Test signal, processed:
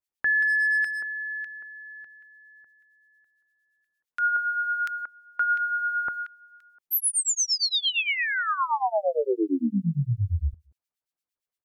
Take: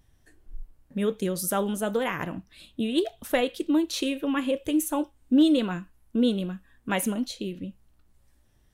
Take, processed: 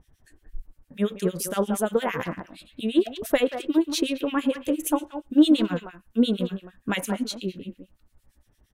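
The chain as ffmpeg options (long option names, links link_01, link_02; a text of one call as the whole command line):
ffmpeg -i in.wav -filter_complex "[0:a]asplit=2[link_01][link_02];[link_02]adelay=180,highpass=300,lowpass=3400,asoftclip=type=hard:threshold=-20dB,volume=-8dB[link_03];[link_01][link_03]amix=inputs=2:normalize=0,acrossover=split=1700[link_04][link_05];[link_04]aeval=exprs='val(0)*(1-1/2+1/2*cos(2*PI*8.7*n/s))':channel_layout=same[link_06];[link_05]aeval=exprs='val(0)*(1-1/2-1/2*cos(2*PI*8.7*n/s))':channel_layout=same[link_07];[link_06][link_07]amix=inputs=2:normalize=0,volume=5.5dB" out.wav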